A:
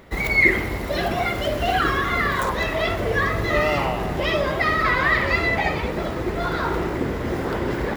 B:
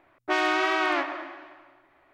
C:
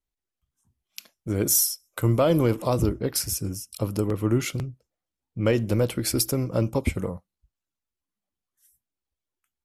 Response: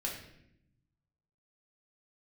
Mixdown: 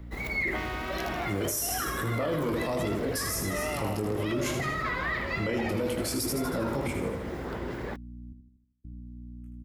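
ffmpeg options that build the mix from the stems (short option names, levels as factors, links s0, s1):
-filter_complex "[0:a]volume=0.282[s0];[1:a]acompressor=threshold=0.0178:ratio=3,adelay=250,volume=0.891[s1];[2:a]flanger=delay=19:depth=2.2:speed=0.97,aeval=exprs='val(0)+0.00891*(sin(2*PI*60*n/s)+sin(2*PI*2*60*n/s)/2+sin(2*PI*3*60*n/s)/3+sin(2*PI*4*60*n/s)/4+sin(2*PI*5*60*n/s)/5)':c=same,volume=1.06,asplit=3[s2][s3][s4];[s2]atrim=end=8.33,asetpts=PTS-STARTPTS,afade=t=out:st=8.326:d=0.004:c=hsin[s5];[s3]atrim=start=8.33:end=8.84,asetpts=PTS-STARTPTS,volume=0[s6];[s4]atrim=start=8.84,asetpts=PTS-STARTPTS,afade=t=in:d=0.004:c=hsin[s7];[s5][s6][s7]concat=n=3:v=0:a=1,asplit=2[s8][s9];[s9]volume=0.447,aecho=0:1:79|158|237|316|395|474|553|632:1|0.53|0.281|0.149|0.0789|0.0418|0.0222|0.0117[s10];[s0][s1][s8][s10]amix=inputs=4:normalize=0,acrossover=split=150|3000[s11][s12][s13];[s11]acompressor=threshold=0.0178:ratio=6[s14];[s14][s12][s13]amix=inputs=3:normalize=0,alimiter=limit=0.0841:level=0:latency=1:release=11"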